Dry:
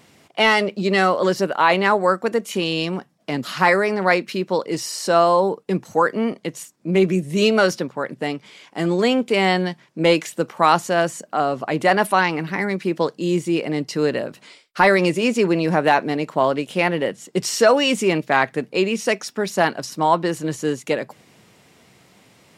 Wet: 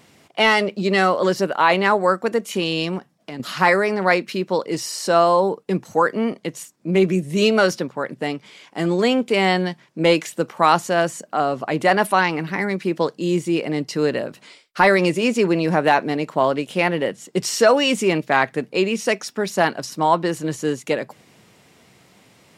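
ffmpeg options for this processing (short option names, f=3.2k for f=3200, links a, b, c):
-filter_complex "[0:a]asettb=1/sr,asplit=3[a][b][c];[a]atrim=end=2.984[d];[b]atrim=start=2.98:end=3.4,asetpts=PTS-STARTPTS,afade=t=in:d=0.004:c=qsin,afade=t=out:st=0.416:d=0.004:c=qsin,acompressor=threshold=-35dB:ratio=2:attack=3.2:release=140:knee=1:detection=peak[e];[c]atrim=start=3.396[f];[d][e]acrossfade=d=0.004:c1=hsin:c2=qsin[g];[g][f]acrossfade=d=0.004:c1=qsin:c2=hsin"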